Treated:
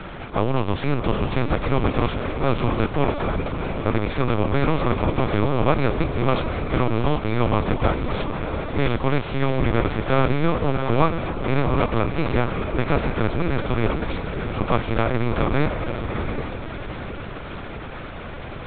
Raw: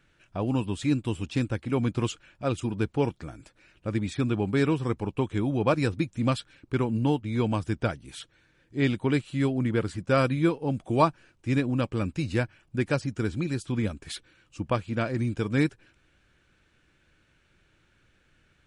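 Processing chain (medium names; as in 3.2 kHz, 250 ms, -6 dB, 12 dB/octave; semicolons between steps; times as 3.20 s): spectral levelling over time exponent 0.4; echo that smears into a reverb 702 ms, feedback 41%, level -6 dB; LPC vocoder at 8 kHz pitch kept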